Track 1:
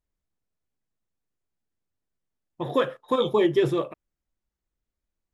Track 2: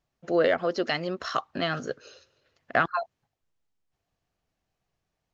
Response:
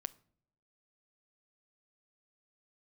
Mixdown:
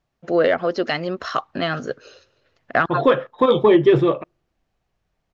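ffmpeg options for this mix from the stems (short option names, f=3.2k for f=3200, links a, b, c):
-filter_complex "[0:a]lowpass=3.9k,adelay=300,volume=2dB,asplit=2[a][b];[b]volume=-22.5dB[c];[1:a]volume=0dB[d];[2:a]atrim=start_sample=2205[e];[c][e]afir=irnorm=-1:irlink=0[f];[a][d][f]amix=inputs=3:normalize=0,highshelf=f=5.9k:g=-9.5,acontrast=42"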